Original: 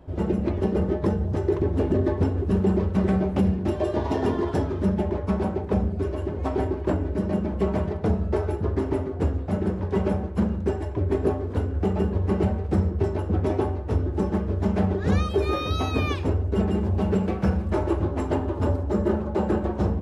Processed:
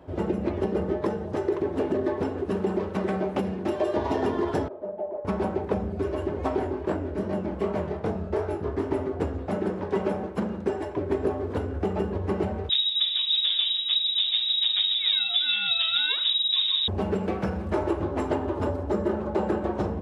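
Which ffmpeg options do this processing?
-filter_complex "[0:a]asettb=1/sr,asplit=3[s0][s1][s2];[s0]atrim=end=1.014[s3];[s1]atrim=start=1.01:end=3.96,asetpts=PTS-STARTPTS,afade=t=in:d=0.004:c=qsin,afade=t=out:st=2.946:d=0.004:c=qsin,highpass=f=230:p=1[s4];[s2]atrim=start=3.956[s5];[s3][s4]acrossfade=d=0.004:c1=hsin:c2=qsin[s6];[s6][s5]acrossfade=d=0.004:c1=qsin:c2=hsin,asettb=1/sr,asplit=3[s7][s8][s9];[s7]atrim=end=4.684[s10];[s8]atrim=start=4.68:end=5.25,asetpts=PTS-STARTPTS,afade=t=in:d=0.004:c=qsin,afade=t=out:st=0.566:d=0.004:c=qsin,bandpass=f=620:t=q:w=4.8[s11];[s9]atrim=start=5.246[s12];[s10][s11]acrossfade=d=0.004:c1=hsin:c2=qsin[s13];[s13][s12]acrossfade=d=0.004:c1=qsin:c2=hsin,asettb=1/sr,asplit=3[s14][s15][s16];[s14]atrim=end=6.594[s17];[s15]atrim=start=6.59:end=8.91,asetpts=PTS-STARTPTS,afade=t=in:d=0.004:c=qsin,afade=t=out:st=2.316:d=0.004:c=qsin,flanger=delay=19.5:depth=7.3:speed=2.6[s18];[s16]atrim=start=8.906[s19];[s17][s18]acrossfade=d=0.004:c1=hsin:c2=qsin[s20];[s20][s19]acrossfade=d=0.004:c1=qsin:c2=hsin,asettb=1/sr,asplit=3[s21][s22][s23];[s21]atrim=end=9.484[s24];[s22]atrim=start=9.48:end=11.1,asetpts=PTS-STARTPTS,afade=t=in:d=0.004:c=qsin,afade=t=out:st=1.616:d=0.004:c=qsin,equalizer=f=72:t=o:w=1.2:g=-10[s25];[s23]atrim=start=11.096[s26];[s24][s25]acrossfade=d=0.004:c1=hsin:c2=qsin[s27];[s27][s26]acrossfade=d=0.004:c1=qsin:c2=hsin,asettb=1/sr,asplit=3[s28][s29][s30];[s28]atrim=end=12.694[s31];[s29]atrim=start=12.69:end=16.88,asetpts=PTS-STARTPTS,afade=t=in:d=0.004:c=qsin,afade=t=out:st=4.186:d=0.004:c=qsin,lowpass=f=3300:t=q:w=0.5098,lowpass=f=3300:t=q:w=0.6013,lowpass=f=3300:t=q:w=0.9,lowpass=f=3300:t=q:w=2.563,afreqshift=-3900[s32];[s30]atrim=start=16.876[s33];[s31][s32]acrossfade=d=0.004:c1=hsin:c2=qsin[s34];[s34][s33]acrossfade=d=0.004:c1=qsin:c2=hsin,highpass=64,acompressor=threshold=0.0708:ratio=6,bass=f=250:g=-7,treble=f=4000:g=-3,volume=1.5"

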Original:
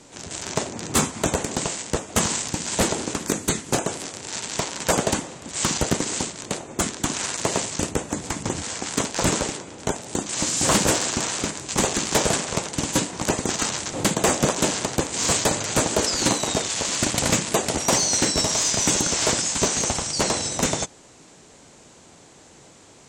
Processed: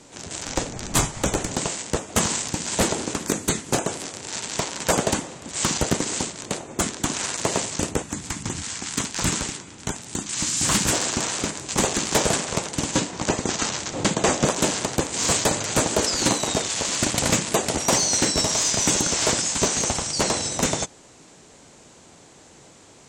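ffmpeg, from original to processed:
-filter_complex "[0:a]asettb=1/sr,asplit=3[s0][s1][s2];[s0]atrim=end=0.454[s3];[s1]atrim=start=0.45:end=1.54,asetpts=PTS-STARTPTS,afade=t=in:d=0.004:c=qsin,afade=t=out:st=1.086:d=0.004:c=qsin,afreqshift=-110[s4];[s2]atrim=start=1.536[s5];[s3][s4]acrossfade=d=0.004:c1=hsin:c2=qsin[s6];[s6][s5]acrossfade=d=0.004:c1=qsin:c2=hsin,asettb=1/sr,asplit=3[s7][s8][s9];[s7]atrim=end=8.024[s10];[s8]atrim=start=8.02:end=10.93,asetpts=PTS-STARTPTS,afade=t=in:d=0.004:c=qsin,afade=t=out:st=2.906:d=0.004:c=qsin,equalizer=f=550:t=o:w=1.4:g=-11[s11];[s9]atrim=start=10.926[s12];[s10][s11]acrossfade=d=0.004:c1=hsin:c2=qsin[s13];[s13][s12]acrossfade=d=0.004:c1=qsin:c2=hsin,asettb=1/sr,asplit=3[s14][s15][s16];[s14]atrim=end=12.914[s17];[s15]atrim=start=12.91:end=14.45,asetpts=PTS-STARTPTS,afade=t=in:d=0.004:c=qsin,afade=t=out:st=1.536:d=0.004:c=qsin,lowpass=f=7900:w=0.5412,lowpass=f=7900:w=1.3066[s18];[s16]atrim=start=14.446[s19];[s17][s18]acrossfade=d=0.004:c1=hsin:c2=qsin[s20];[s20][s19]acrossfade=d=0.004:c1=qsin:c2=hsin"

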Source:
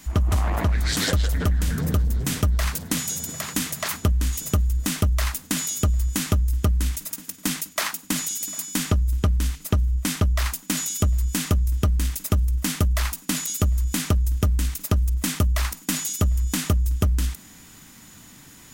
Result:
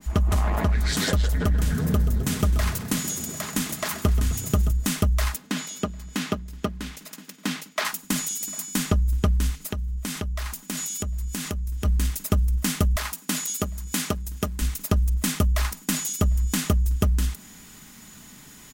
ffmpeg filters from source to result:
-filter_complex "[0:a]asettb=1/sr,asplit=3[s0][s1][s2];[s0]atrim=end=1.344[s3];[s1]atrim=start=1.34:end=4.72,asetpts=PTS-STARTPTS,afade=t=in:d=0.004:c=qsin,afade=t=out:st=3.376:d=0.004:c=qsin,asplit=8[s4][s5][s6][s7][s8][s9][s10][s11];[s5]adelay=130,afreqshift=30,volume=0.251[s12];[s6]adelay=260,afreqshift=60,volume=0.148[s13];[s7]adelay=390,afreqshift=90,volume=0.0871[s14];[s8]adelay=520,afreqshift=120,volume=0.0519[s15];[s9]adelay=650,afreqshift=150,volume=0.0305[s16];[s10]adelay=780,afreqshift=180,volume=0.018[s17];[s11]adelay=910,afreqshift=210,volume=0.0106[s18];[s4][s12][s13][s14][s15][s16][s17][s18]amix=inputs=8:normalize=0,atrim=end_sample=149058[s19];[s2]atrim=start=4.716[s20];[s3][s19]acrossfade=d=0.004:c1=hsin:c2=qsin[s21];[s21][s20]acrossfade=d=0.004:c1=qsin:c2=hsin,asettb=1/sr,asplit=3[s22][s23][s24];[s22]atrim=end=5.364[s25];[s23]atrim=start=5.36:end=7.85,asetpts=PTS-STARTPTS,afade=t=in:d=0.004:c=qsin,afade=t=out:st=2.486:d=0.004:c=qsin,acrossover=split=150 5000:gain=0.126 1 0.224[s26][s27][s28];[s26][s27][s28]amix=inputs=3:normalize=0[s29];[s24]atrim=start=7.846[s30];[s25][s29]acrossfade=d=0.004:c1=hsin:c2=qsin[s31];[s31][s30]acrossfade=d=0.004:c1=qsin:c2=hsin,asplit=3[s32][s33][s34];[s32]afade=t=out:st=9.57:d=0.02[s35];[s33]acompressor=threshold=0.0447:ratio=4:attack=3.2:release=140:knee=1:detection=peak,afade=t=in:st=9.57:d=0.02,afade=t=out:st=11.84:d=0.02[s36];[s34]afade=t=in:st=11.84:d=0.02[s37];[s35][s36][s37]amix=inputs=3:normalize=0,asettb=1/sr,asplit=3[s38][s39][s40];[s38]atrim=end=12.964[s41];[s39]atrim=start=12.96:end=14.62,asetpts=PTS-STARTPTS,afade=t=in:d=0.004:c=qsin,afade=t=out:st=1.656:d=0.004:c=qsin,highpass=f=220:p=1[s42];[s40]atrim=start=14.616[s43];[s41][s42]acrossfade=d=0.004:c1=hsin:c2=qsin[s44];[s44][s43]acrossfade=d=0.004:c1=qsin:c2=hsin,aecho=1:1:4.8:0.32,adynamicequalizer=threshold=0.00631:dfrequency=1500:dqfactor=0.7:tfrequency=1500:tqfactor=0.7:attack=5:release=100:ratio=0.375:range=1.5:mode=cutabove:tftype=highshelf"

